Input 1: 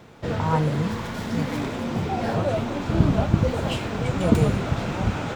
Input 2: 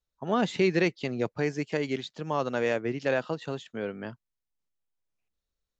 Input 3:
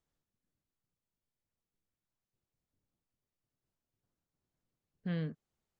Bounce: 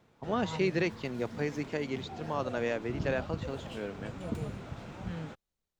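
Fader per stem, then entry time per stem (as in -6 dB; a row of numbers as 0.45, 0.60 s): -17.5, -5.0, -4.5 dB; 0.00, 0.00, 0.00 s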